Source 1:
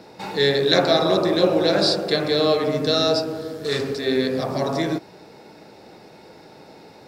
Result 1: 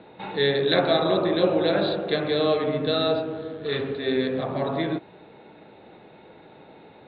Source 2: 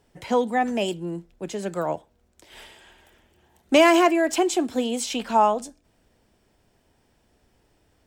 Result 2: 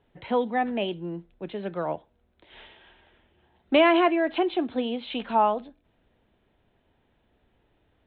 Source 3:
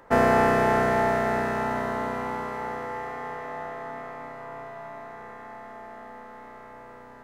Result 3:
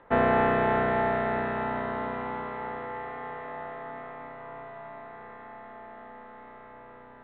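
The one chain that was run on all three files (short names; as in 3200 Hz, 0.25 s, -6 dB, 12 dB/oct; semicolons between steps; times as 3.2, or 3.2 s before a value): steep low-pass 3900 Hz 96 dB/oct; gain -3 dB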